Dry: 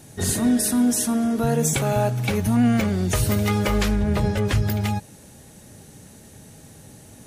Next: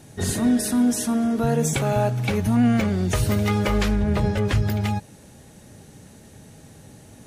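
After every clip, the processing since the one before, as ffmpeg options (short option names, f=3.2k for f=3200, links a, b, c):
-af "highshelf=f=7.2k:g=-7.5"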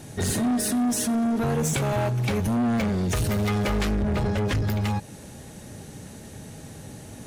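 -filter_complex "[0:a]asplit=2[a][b];[b]acompressor=threshold=-28dB:ratio=6,volume=-2dB[c];[a][c]amix=inputs=2:normalize=0,asoftclip=type=tanh:threshold=-20.5dB"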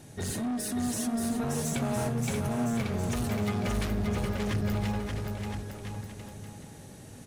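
-af "aecho=1:1:580|1015|1341|1586|1769:0.631|0.398|0.251|0.158|0.1,volume=-8dB"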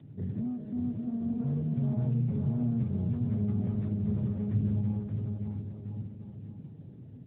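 -af "bandpass=f=130:t=q:w=1.5:csg=0,volume=5.5dB" -ar 8000 -c:a libopencore_amrnb -b:a 10200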